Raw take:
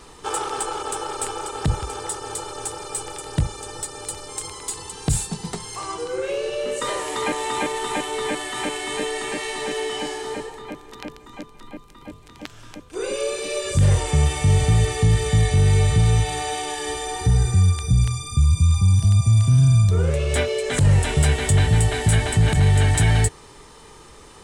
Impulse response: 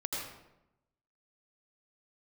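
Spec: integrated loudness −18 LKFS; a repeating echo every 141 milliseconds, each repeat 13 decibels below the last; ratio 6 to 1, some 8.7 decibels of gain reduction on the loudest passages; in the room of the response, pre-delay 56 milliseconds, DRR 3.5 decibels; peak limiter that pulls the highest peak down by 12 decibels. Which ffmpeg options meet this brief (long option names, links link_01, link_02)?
-filter_complex "[0:a]acompressor=threshold=-22dB:ratio=6,alimiter=limit=-23dB:level=0:latency=1,aecho=1:1:141|282|423:0.224|0.0493|0.0108,asplit=2[link_01][link_02];[1:a]atrim=start_sample=2205,adelay=56[link_03];[link_02][link_03]afir=irnorm=-1:irlink=0,volume=-7dB[link_04];[link_01][link_04]amix=inputs=2:normalize=0,volume=12dB"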